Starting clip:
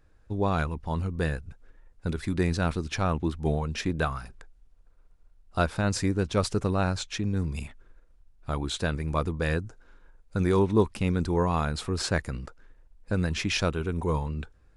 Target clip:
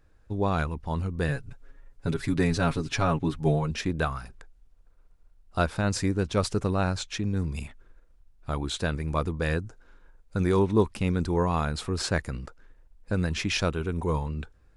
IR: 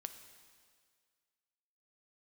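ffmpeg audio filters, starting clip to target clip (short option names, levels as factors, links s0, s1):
-filter_complex "[0:a]asettb=1/sr,asplit=3[s0][s1][s2];[s0]atrim=end=1.284[s3];[s1]atrim=start=1.28:end=3.71,asetpts=PTS-STARTPTS,afade=t=in:d=0.004:c=qsin,afade=t=out:st=2.426:d=0.004:c=qsin,aecho=1:1:7.2:0.9,atrim=end_sample=107163[s4];[s2]atrim=start=3.706[s5];[s3][s4]acrossfade=d=0.004:c1=hsin:c2=qsin[s6];[s6][s5]acrossfade=d=0.004:c1=qsin:c2=hsin"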